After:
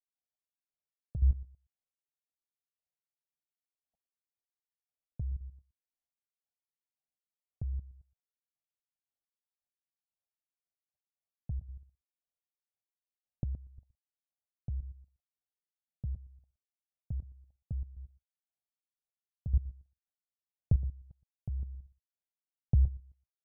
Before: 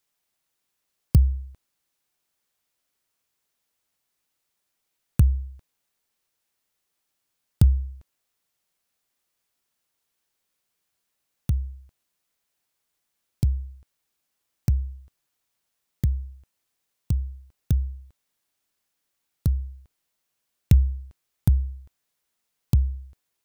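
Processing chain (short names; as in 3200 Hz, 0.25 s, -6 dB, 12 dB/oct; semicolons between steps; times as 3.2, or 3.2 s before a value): steep low-pass 840 Hz 72 dB/oct; comb 1.4 ms, depth 76%; limiter -15 dBFS, peak gain reduction 11.5 dB; level quantiser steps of 22 dB; step gate "..x.....xx.." 172 bpm -12 dB; echo 0.119 s -19 dB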